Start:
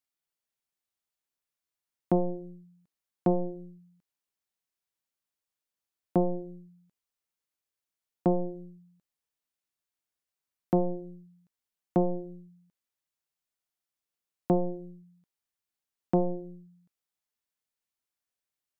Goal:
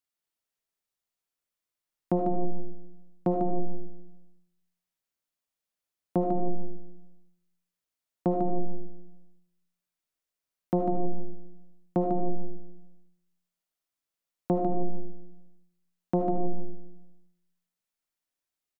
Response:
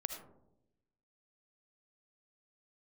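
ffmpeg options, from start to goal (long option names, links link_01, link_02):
-filter_complex "[0:a]aecho=1:1:148:0.501[link_01];[1:a]atrim=start_sample=2205[link_02];[link_01][link_02]afir=irnorm=-1:irlink=0"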